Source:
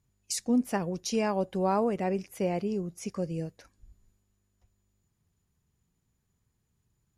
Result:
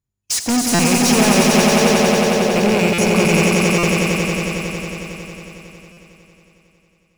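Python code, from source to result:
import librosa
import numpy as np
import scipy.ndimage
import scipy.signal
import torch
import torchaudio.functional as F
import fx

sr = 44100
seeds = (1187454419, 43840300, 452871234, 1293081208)

y = fx.rattle_buzz(x, sr, strikes_db=-39.0, level_db=-25.0)
y = fx.leveller(y, sr, passes=5)
y = fx.ladder_lowpass(y, sr, hz=650.0, resonance_pct=55, at=(1.62, 2.56))
y = fx.echo_swell(y, sr, ms=91, loudest=5, wet_db=-3.5)
y = fx.buffer_glitch(y, sr, at_s=(0.74, 2.93, 3.78, 5.92), block=256, repeats=8)
y = F.gain(torch.from_numpy(y), 1.0).numpy()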